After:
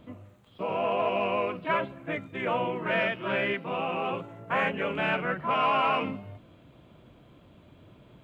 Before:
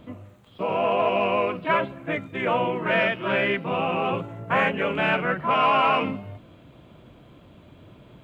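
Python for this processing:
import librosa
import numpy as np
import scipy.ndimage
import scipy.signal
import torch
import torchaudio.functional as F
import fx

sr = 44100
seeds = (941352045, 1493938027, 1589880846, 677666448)

y = fx.highpass(x, sr, hz=180.0, slope=6, at=(3.53, 4.63))
y = F.gain(torch.from_numpy(y), -5.0).numpy()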